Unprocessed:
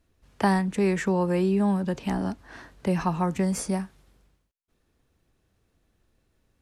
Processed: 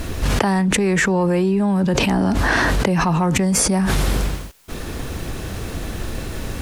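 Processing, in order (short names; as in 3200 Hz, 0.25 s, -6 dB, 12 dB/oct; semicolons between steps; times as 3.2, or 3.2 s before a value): in parallel at -11 dB: hard clip -22 dBFS, distortion -11 dB; on the sum: fast leveller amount 100%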